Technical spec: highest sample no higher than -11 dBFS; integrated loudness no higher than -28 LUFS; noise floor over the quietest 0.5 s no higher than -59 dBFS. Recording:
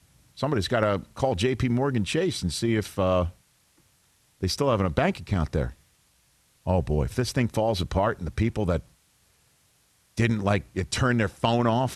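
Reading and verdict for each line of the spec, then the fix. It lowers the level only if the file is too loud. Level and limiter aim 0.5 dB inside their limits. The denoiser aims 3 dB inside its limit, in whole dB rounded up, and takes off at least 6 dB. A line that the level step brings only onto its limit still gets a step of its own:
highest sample -9.5 dBFS: fail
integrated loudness -26.0 LUFS: fail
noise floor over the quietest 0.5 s -64 dBFS: OK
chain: gain -2.5 dB

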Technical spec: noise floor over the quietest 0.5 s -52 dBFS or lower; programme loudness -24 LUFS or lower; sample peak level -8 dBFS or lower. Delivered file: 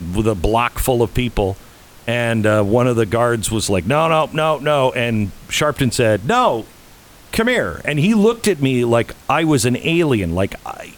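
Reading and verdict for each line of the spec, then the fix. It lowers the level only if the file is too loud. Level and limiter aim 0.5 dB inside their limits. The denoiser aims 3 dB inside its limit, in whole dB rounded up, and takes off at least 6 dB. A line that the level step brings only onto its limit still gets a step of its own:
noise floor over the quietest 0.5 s -44 dBFS: fail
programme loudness -17.0 LUFS: fail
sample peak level -3.0 dBFS: fail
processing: denoiser 6 dB, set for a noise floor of -44 dBFS; gain -7.5 dB

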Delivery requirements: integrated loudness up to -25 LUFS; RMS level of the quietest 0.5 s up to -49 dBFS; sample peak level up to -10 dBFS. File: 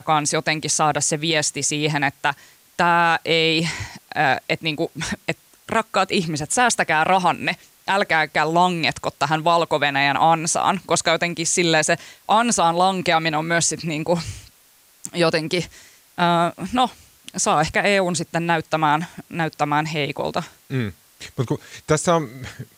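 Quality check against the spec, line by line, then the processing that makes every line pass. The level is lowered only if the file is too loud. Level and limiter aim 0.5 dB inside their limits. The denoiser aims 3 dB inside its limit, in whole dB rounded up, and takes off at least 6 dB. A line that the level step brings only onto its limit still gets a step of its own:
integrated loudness -20.0 LUFS: fail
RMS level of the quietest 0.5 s -55 dBFS: OK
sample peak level -6.0 dBFS: fail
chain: gain -5.5 dB

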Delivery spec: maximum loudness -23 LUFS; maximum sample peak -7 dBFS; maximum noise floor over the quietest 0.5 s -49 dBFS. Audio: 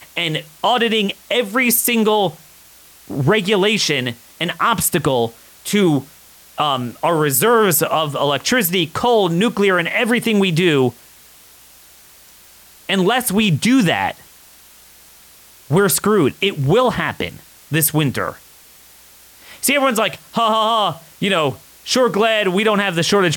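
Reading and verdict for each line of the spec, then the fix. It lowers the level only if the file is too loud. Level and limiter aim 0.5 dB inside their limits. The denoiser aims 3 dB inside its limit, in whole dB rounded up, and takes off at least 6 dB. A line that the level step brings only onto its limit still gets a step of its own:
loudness -16.5 LUFS: fail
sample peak -5.5 dBFS: fail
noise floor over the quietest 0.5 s -46 dBFS: fail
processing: gain -7 dB

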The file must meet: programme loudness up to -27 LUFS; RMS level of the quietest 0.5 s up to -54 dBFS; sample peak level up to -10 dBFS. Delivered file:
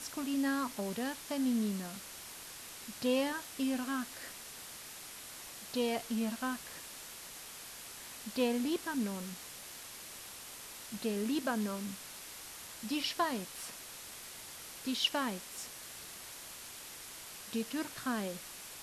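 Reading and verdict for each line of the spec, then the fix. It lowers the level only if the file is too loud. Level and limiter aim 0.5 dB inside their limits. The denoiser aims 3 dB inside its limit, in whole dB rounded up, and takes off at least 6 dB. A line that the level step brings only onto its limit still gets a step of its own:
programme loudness -38.0 LUFS: OK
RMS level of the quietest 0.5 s -49 dBFS: fail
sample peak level -17.5 dBFS: OK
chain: denoiser 8 dB, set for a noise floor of -49 dBFS

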